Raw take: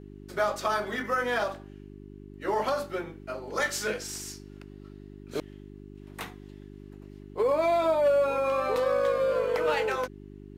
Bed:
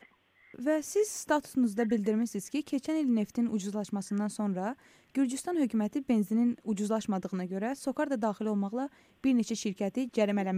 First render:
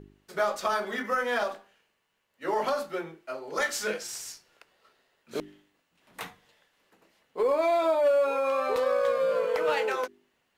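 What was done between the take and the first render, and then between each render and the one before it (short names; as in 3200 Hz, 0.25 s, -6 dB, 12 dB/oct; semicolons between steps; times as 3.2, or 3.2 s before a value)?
de-hum 50 Hz, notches 8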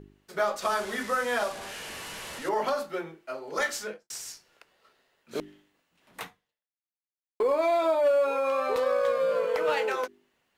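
0.62–2.49 delta modulation 64 kbps, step -33.5 dBFS; 3.69–4.1 studio fade out; 6.22–7.4 fade out exponential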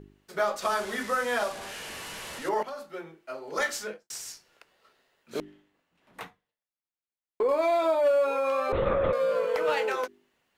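2.63–3.53 fade in, from -13 dB; 5.4–7.49 high shelf 3300 Hz -9 dB; 8.72–9.13 LPC vocoder at 8 kHz whisper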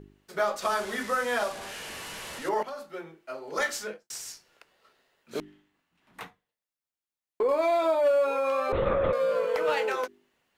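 5.39–6.22 bell 520 Hz -8 dB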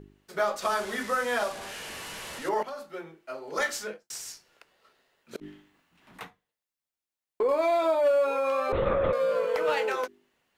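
5.36–6.21 negative-ratio compressor -48 dBFS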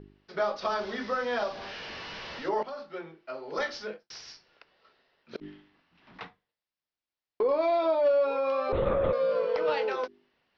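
steep low-pass 5500 Hz 72 dB/oct; dynamic EQ 1900 Hz, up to -5 dB, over -40 dBFS, Q 0.81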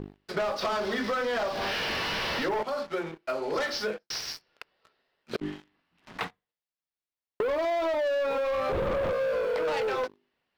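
sample leveller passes 3; compressor, threshold -27 dBFS, peak gain reduction 8.5 dB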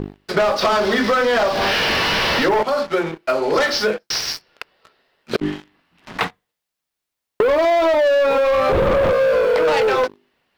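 gain +12 dB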